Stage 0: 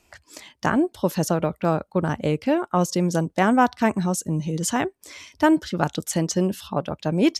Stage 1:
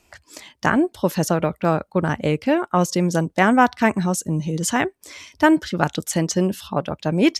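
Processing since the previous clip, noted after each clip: dynamic bell 2 kHz, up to +5 dB, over -38 dBFS, Q 1.4; trim +2 dB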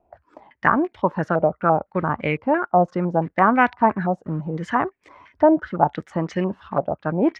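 in parallel at -9 dB: word length cut 6-bit, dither none; on the sum: step-sequenced low-pass 5.9 Hz 710–2200 Hz; trim -6.5 dB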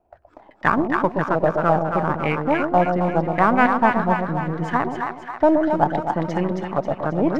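partial rectifier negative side -3 dB; two-band feedback delay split 740 Hz, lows 122 ms, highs 270 ms, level -4 dB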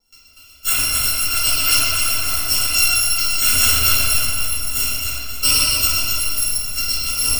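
bit-reversed sample order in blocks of 256 samples; reverberation RT60 2.5 s, pre-delay 4 ms, DRR -12.5 dB; trim -9 dB

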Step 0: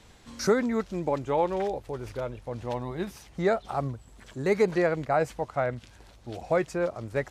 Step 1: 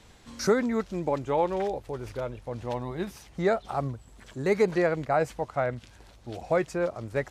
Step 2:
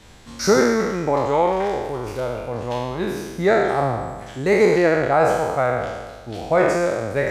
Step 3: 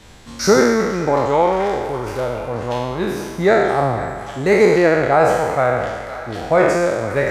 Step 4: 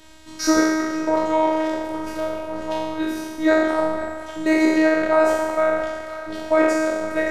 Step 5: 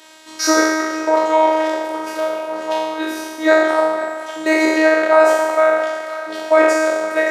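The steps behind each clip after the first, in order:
no audible change
spectral sustain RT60 1.41 s; trim +5 dB
band-passed feedback delay 504 ms, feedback 74%, band-pass 1.5 kHz, level -13 dB; trim +3 dB
robot voice 316 Hz; trim -1 dB
high-pass 440 Hz 12 dB/octave; trim +6.5 dB

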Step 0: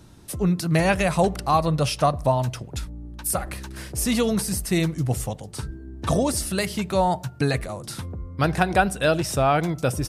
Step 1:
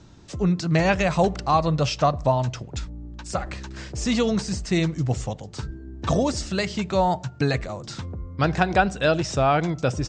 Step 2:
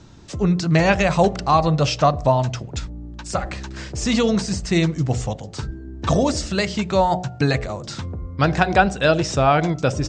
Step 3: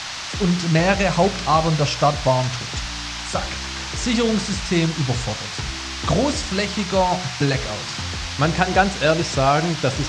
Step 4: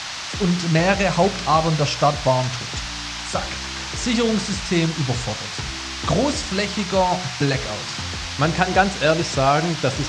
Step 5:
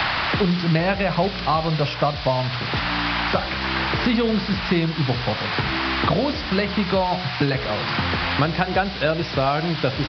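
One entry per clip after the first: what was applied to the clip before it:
steep low-pass 7.6 kHz 72 dB/octave
de-hum 60.65 Hz, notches 13; trim +4 dB
band noise 690–6000 Hz -30 dBFS; trim -1 dB
bass shelf 64 Hz -5.5 dB
resampled via 11.025 kHz; three bands compressed up and down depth 100%; trim -2 dB

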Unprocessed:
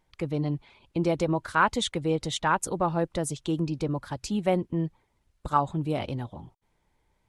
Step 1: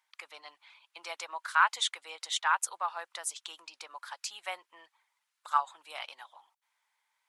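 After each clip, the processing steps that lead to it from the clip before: high-pass 1 kHz 24 dB/octave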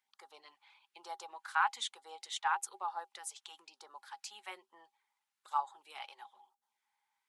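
LFO notch sine 1.1 Hz 260–2600 Hz; small resonant body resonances 230/380/810 Hz, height 16 dB, ringing for 90 ms; harmonic-percussive split percussive -3 dB; trim -5.5 dB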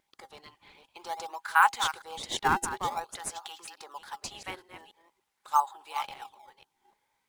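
chunks repeated in reverse 289 ms, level -10.5 dB; wow and flutter 24 cents; in parallel at -8 dB: decimation with a swept rate 21×, swing 160% 0.48 Hz; on the sum: trim +6.5 dB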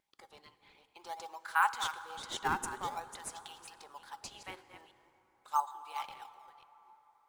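plate-style reverb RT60 4.3 s, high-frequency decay 0.45×, DRR 13.5 dB; trim -7 dB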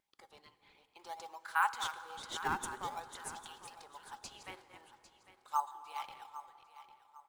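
feedback delay 801 ms, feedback 31%, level -14.5 dB; trim -2.5 dB

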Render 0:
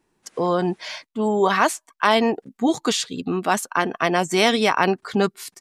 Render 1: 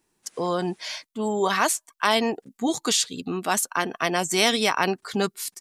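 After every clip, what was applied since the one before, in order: treble shelf 4 kHz +12 dB; trim -5 dB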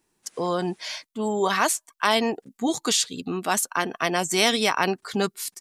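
no audible change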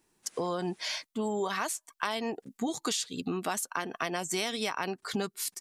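compression 6:1, threshold -29 dBFS, peak gain reduction 14 dB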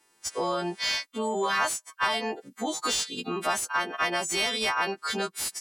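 partials quantised in pitch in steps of 2 st; overdrive pedal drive 14 dB, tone 1.9 kHz, clips at -11.5 dBFS

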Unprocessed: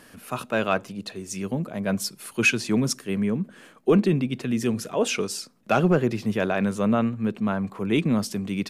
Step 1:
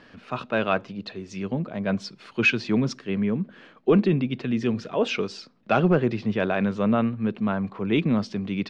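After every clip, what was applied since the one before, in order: low-pass 4.5 kHz 24 dB/octave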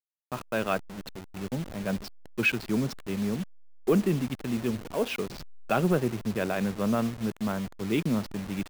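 send-on-delta sampling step -30 dBFS; trim -4.5 dB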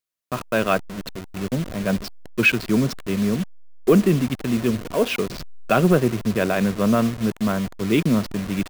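Butterworth band-stop 840 Hz, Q 7.4; trim +8 dB

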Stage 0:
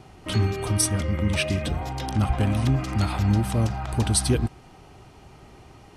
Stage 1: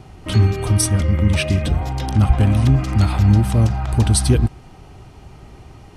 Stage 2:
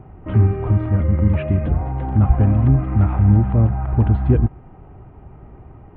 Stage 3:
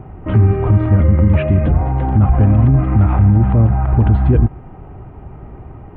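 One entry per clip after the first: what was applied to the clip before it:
bass shelf 150 Hz +8.5 dB; trim +3 dB
Gaussian low-pass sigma 5 samples
peak limiter -10.5 dBFS, peak gain reduction 8 dB; trim +7 dB

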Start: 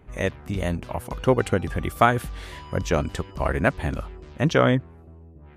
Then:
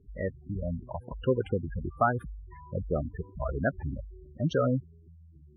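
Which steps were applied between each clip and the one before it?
spectral gate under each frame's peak -10 dB strong; treble shelf 8.4 kHz -11.5 dB; trim -6 dB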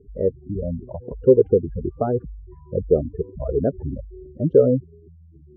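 resonant low-pass 440 Hz, resonance Q 4.9; trim +4.5 dB

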